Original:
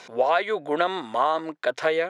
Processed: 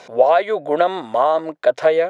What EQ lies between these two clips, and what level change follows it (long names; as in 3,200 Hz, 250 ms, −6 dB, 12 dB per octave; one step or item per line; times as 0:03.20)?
low-shelf EQ 150 Hz +10 dB
parametric band 600 Hz +10 dB 0.87 octaves
0.0 dB